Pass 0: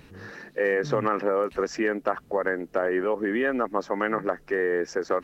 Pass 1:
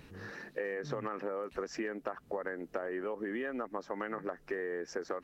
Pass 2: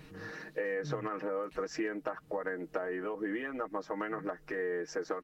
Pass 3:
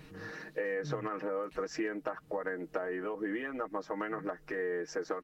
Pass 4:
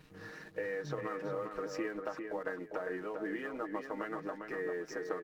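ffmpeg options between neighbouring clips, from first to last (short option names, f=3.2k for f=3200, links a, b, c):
-af "acompressor=threshold=-29dB:ratio=10,volume=-4dB"
-af "aecho=1:1:6.4:0.71"
-af anull
-filter_complex "[0:a]aeval=exprs='sgn(val(0))*max(abs(val(0))-0.00119,0)':c=same,asplit=2[a][b];[b]adelay=400,lowpass=f=3.2k:p=1,volume=-5.5dB,asplit=2[c][d];[d]adelay=400,lowpass=f=3.2k:p=1,volume=0.26,asplit=2[e][f];[f]adelay=400,lowpass=f=3.2k:p=1,volume=0.26[g];[a][c][e][g]amix=inputs=4:normalize=0,volume=-3dB"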